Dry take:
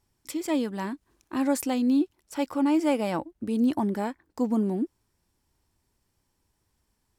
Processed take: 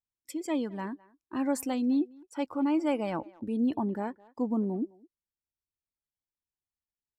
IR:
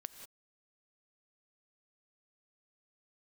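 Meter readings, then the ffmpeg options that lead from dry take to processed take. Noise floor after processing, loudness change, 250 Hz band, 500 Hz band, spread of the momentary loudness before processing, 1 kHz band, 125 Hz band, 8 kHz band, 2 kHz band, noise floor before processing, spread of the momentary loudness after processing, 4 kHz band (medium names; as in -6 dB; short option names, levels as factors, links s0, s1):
under -85 dBFS, -4.0 dB, -4.0 dB, -4.0 dB, 11 LU, -4.0 dB, -4.0 dB, -5.5 dB, -5.0 dB, -76 dBFS, 11 LU, -6.5 dB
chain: -filter_complex "[0:a]agate=range=0.355:threshold=0.002:ratio=16:detection=peak,afftdn=nr=17:nf=-43,asplit=2[s0][s1];[s1]adelay=210,highpass=300,lowpass=3400,asoftclip=type=hard:threshold=0.0841,volume=0.0794[s2];[s0][s2]amix=inputs=2:normalize=0,volume=0.631"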